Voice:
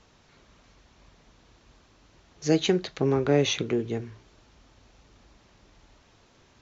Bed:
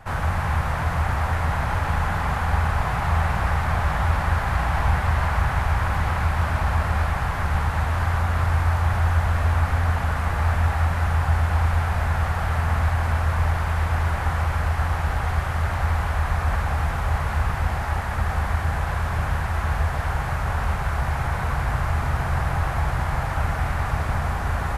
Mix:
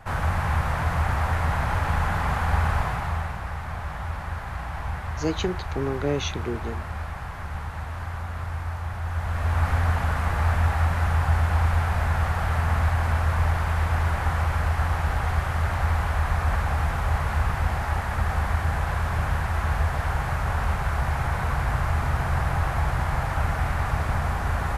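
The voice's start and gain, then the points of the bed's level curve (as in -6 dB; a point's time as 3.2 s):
2.75 s, -4.0 dB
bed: 2.76 s -1 dB
3.4 s -10 dB
9.01 s -10 dB
9.67 s -1 dB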